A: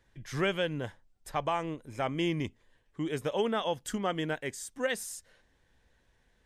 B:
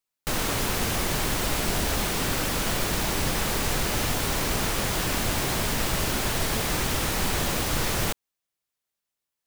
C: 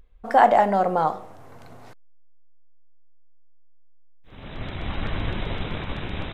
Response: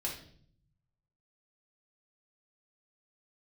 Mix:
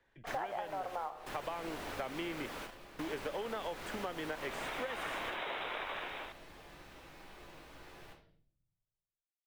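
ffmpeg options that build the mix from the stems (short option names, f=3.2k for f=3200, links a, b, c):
-filter_complex "[0:a]acrossover=split=210|480|2700[a][b][c][d];[a]acompressor=threshold=-44dB:ratio=4[e];[b]acompressor=threshold=-35dB:ratio=4[f];[c]acompressor=threshold=-32dB:ratio=4[g];[d]acompressor=threshold=-43dB:ratio=4[h];[e][f][g][h]amix=inputs=4:normalize=0,volume=-0.5dB,asplit=2[i][j];[1:a]volume=-14.5dB,asplit=2[k][l];[l]volume=-12.5dB[m];[2:a]highpass=590,dynaudnorm=f=230:g=5:m=11dB,acrusher=bits=6:mix=0:aa=0.5,volume=-10.5dB[n];[j]apad=whole_len=417250[o];[k][o]sidechaingate=range=-33dB:threshold=-59dB:ratio=16:detection=peak[p];[3:a]atrim=start_sample=2205[q];[m][q]afir=irnorm=-1:irlink=0[r];[i][p][n][r]amix=inputs=4:normalize=0,bass=f=250:g=-11,treble=f=4k:g=-12,acompressor=threshold=-35dB:ratio=16"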